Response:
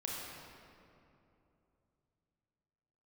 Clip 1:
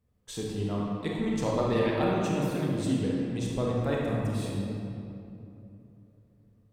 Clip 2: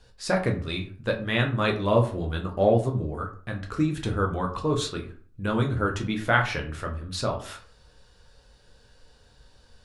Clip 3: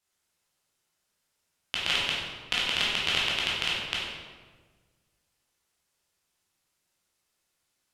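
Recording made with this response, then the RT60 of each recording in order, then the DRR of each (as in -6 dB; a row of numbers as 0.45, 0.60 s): 1; 2.9, 0.45, 1.5 s; -4.0, 1.5, -6.5 dB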